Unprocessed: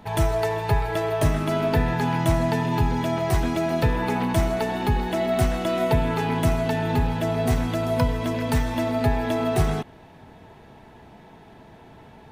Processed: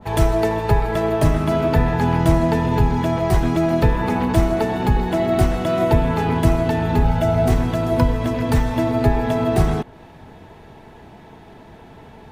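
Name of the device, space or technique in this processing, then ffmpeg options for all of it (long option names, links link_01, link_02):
octave pedal: -filter_complex "[0:a]asplit=2[link_01][link_02];[link_02]asetrate=22050,aresample=44100,atempo=2,volume=-6dB[link_03];[link_01][link_03]amix=inputs=2:normalize=0,asettb=1/sr,asplit=3[link_04][link_05][link_06];[link_04]atrim=end=7.044[link_07];[link_05]atrim=start=7.04:end=7.48,asetpts=PTS-STARTPTS,afade=type=in:duration=0.004:curve=qsin,afade=type=out:start_time=0.436:duration=0.004:curve=qsin,aecho=1:1:1.4:0.63,atrim=end_sample=19404[link_08];[link_06]atrim=start=7.476[link_09];[link_07][link_08]acrossfade=duration=0.004:curve1=hsin:curve2=qsin[link_10];[link_10][link_09]acrossfade=duration=0.004:curve1=qsin:curve2=hsin,adynamicequalizer=threshold=0.00891:dfrequency=1600:dqfactor=0.7:tfrequency=1600:tqfactor=0.7:attack=5:release=100:ratio=0.375:range=2:mode=cutabove:tftype=highshelf,volume=4dB"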